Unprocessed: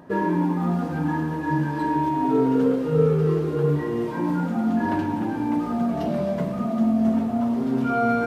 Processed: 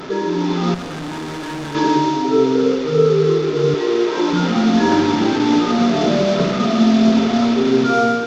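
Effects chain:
linear delta modulator 32 kbit/s, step −25.5 dBFS
parametric band 64 Hz −15 dB 0.71 octaves
hollow resonant body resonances 400/1,300/3,500 Hz, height 11 dB
automatic gain control gain up to 11.5 dB
0:00.74–0:01.75: tube saturation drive 23 dB, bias 0.75
0:03.74–0:04.33: low shelf with overshoot 270 Hz −11 dB, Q 1.5
level −2 dB

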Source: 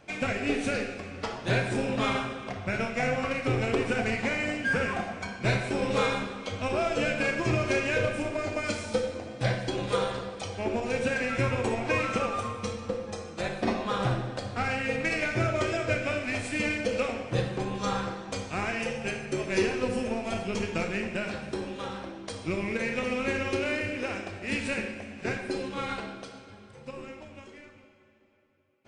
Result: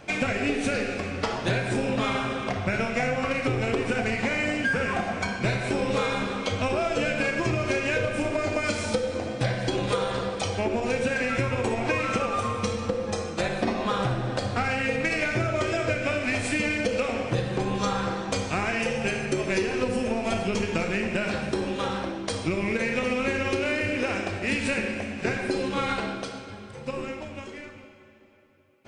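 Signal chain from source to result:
downward compressor, threshold −31 dBFS, peak gain reduction 10.5 dB
level +8.5 dB

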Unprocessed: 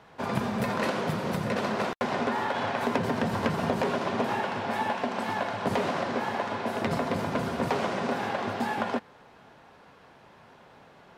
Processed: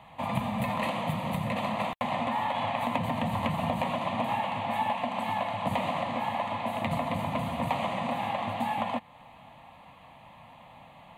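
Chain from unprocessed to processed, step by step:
phaser with its sweep stopped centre 1,500 Hz, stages 6
in parallel at −1.5 dB: downward compressor, threshold −41 dBFS, peak gain reduction 15.5 dB

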